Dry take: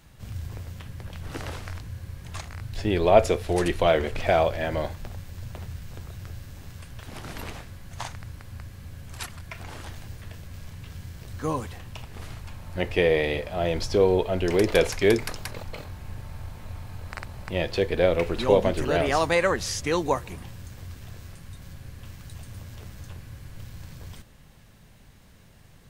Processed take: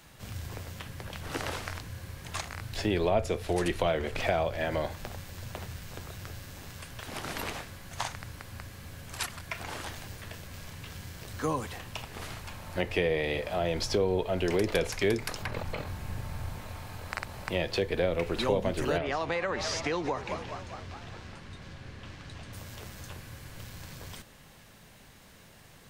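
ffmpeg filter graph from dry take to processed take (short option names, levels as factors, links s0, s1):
-filter_complex "[0:a]asettb=1/sr,asplit=3[s0][s1][s2];[s0]atrim=end=15.424[s3];[s1]atrim=start=15.42:end=16.61,asetpts=PTS-STARTPTS,afade=t=in:d=0.004:c=qsin,afade=t=out:st=1.186:d=0.004:c=qsin,acrossover=split=3000[s4][s5];[s5]acompressor=threshold=0.00141:ratio=4:attack=1:release=60[s6];[s4][s6]amix=inputs=2:normalize=0,bass=f=250:g=6,treble=f=4000:g=3[s7];[s2]atrim=start=16.606[s8];[s3][s7]acrossfade=d=0.004:c1=hsin:c2=qsin[s9];[s9][s8]acrossfade=d=0.004:c1=qsin:c2=hsin,asettb=1/sr,asplit=3[s10][s11][s12];[s10]atrim=end=18.984[s13];[s11]atrim=start=18.98:end=22.53,asetpts=PTS-STARTPTS,afade=t=in:d=0.004:c=qsin,afade=t=out:st=3.546:d=0.004:c=qsin,lowpass=4400,asplit=7[s14][s15][s16][s17][s18][s19][s20];[s15]adelay=208,afreqshift=69,volume=0.15[s21];[s16]adelay=416,afreqshift=138,volume=0.0902[s22];[s17]adelay=624,afreqshift=207,volume=0.0537[s23];[s18]adelay=832,afreqshift=276,volume=0.0324[s24];[s19]adelay=1040,afreqshift=345,volume=0.0195[s25];[s20]adelay=1248,afreqshift=414,volume=0.0116[s26];[s14][s21][s22][s23][s24][s25][s26]amix=inputs=7:normalize=0,atrim=end_sample=156555,acompressor=threshold=0.0501:ratio=2.5:attack=3.2:release=140:knee=1:detection=peak[s27];[s12]atrim=start=22.526[s28];[s13][s27]acrossfade=d=0.004:c1=hsin:c2=qsin[s29];[s29][s28]acrossfade=d=0.004:c1=qsin:c2=hsin,lowshelf=f=180:g=-11.5,acrossover=split=200[s30][s31];[s31]acompressor=threshold=0.0224:ratio=3[s32];[s30][s32]amix=inputs=2:normalize=0,volume=1.58"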